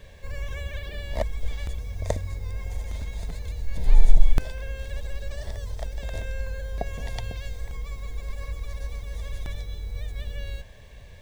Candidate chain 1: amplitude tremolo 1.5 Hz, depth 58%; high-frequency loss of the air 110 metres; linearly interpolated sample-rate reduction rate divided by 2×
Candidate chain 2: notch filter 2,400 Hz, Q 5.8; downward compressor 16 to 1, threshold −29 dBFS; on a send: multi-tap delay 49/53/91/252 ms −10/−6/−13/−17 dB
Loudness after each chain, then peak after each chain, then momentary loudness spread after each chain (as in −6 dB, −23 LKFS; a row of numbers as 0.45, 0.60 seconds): −35.0, −39.5 LKFS; −3.5, −17.0 dBFS; 10, 4 LU